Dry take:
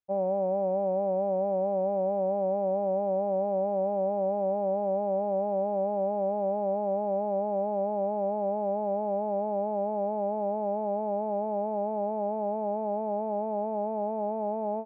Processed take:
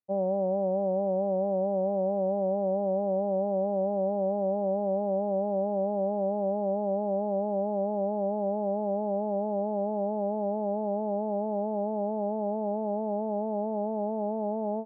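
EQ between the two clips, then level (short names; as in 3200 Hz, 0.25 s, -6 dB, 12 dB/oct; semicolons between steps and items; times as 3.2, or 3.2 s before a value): HPF 190 Hz; air absorption 140 m; tilt -4 dB/oct; -3.0 dB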